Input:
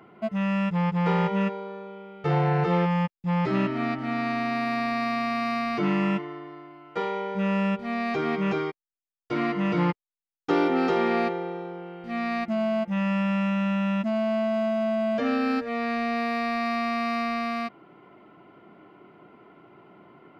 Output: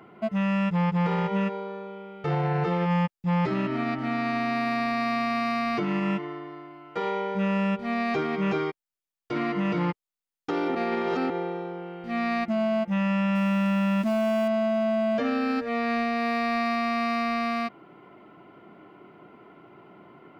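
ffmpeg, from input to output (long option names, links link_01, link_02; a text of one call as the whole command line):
ffmpeg -i in.wav -filter_complex "[0:a]asettb=1/sr,asplit=3[link_01][link_02][link_03];[link_01]atrim=end=13.354[link_04];[link_02]atrim=start=13.35:end=14.48,asetpts=PTS-STARTPTS,afade=type=in:duration=0.004:curve=qsin,afade=type=out:start_time=1.126:duration=0.004:curve=qsin,aeval=exprs='val(0)+0.5*0.015*sgn(val(0))':channel_layout=same[link_05];[link_03]atrim=start=14.476[link_06];[link_04][link_05]acrossfade=duration=0.004:curve1=hsin:curve2=qsin[link_07];[link_07][link_06]acrossfade=duration=0.004:curve1=qsin:curve2=hsin,asplit=3[link_08][link_09][link_10];[link_08]atrim=end=10.752[link_11];[link_09]atrim=start=10.748:end=11.302,asetpts=PTS-STARTPTS,areverse[link_12];[link_10]atrim=start=11.298[link_13];[link_11][link_12]acrossfade=duration=0.004:curve1=hsin:curve2=hsin[link_14];[link_14][link_13]acrossfade=duration=0.004:curve1=hsin:curve2=hsin,alimiter=limit=-20dB:level=0:latency=1:release=82,volume=1.5dB" out.wav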